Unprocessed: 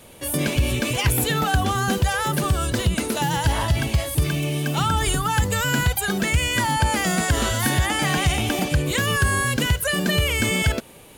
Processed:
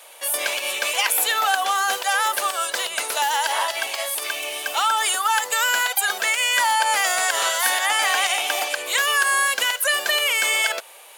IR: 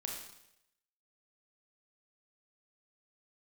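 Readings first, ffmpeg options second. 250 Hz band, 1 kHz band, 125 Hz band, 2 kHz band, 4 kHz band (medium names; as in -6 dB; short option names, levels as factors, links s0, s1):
under -20 dB, +3.5 dB, under -40 dB, +4.0 dB, +4.0 dB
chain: -af "highpass=f=630:w=0.5412,highpass=f=630:w=1.3066,volume=1.58"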